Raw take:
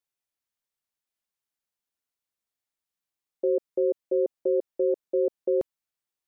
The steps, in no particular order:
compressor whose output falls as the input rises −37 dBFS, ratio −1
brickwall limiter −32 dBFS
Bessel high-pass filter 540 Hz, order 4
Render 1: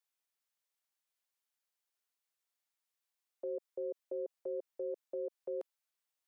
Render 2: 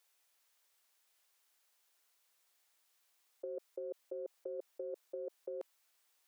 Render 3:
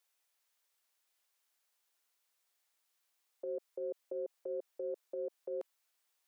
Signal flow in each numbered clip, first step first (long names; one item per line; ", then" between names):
Bessel high-pass filter, then brickwall limiter, then compressor whose output falls as the input rises
compressor whose output falls as the input rises, then Bessel high-pass filter, then brickwall limiter
Bessel high-pass filter, then compressor whose output falls as the input rises, then brickwall limiter